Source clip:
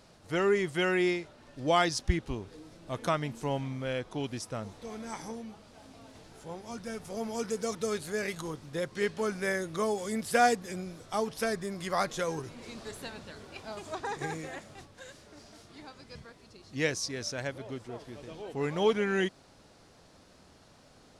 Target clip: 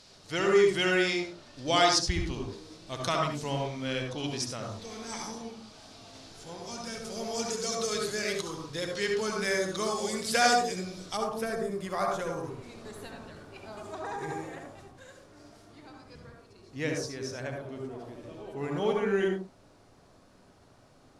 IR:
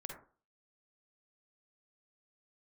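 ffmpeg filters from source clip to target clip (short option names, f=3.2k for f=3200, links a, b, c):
-filter_complex "[0:a]asetnsamples=n=441:p=0,asendcmd='11.17 equalizer g -2.5',equalizer=f=4.7k:w=0.66:g=13.5[a];[1:a]atrim=start_sample=2205,atrim=end_sample=6615,asetrate=31311,aresample=44100[b];[a][b]afir=irnorm=-1:irlink=0"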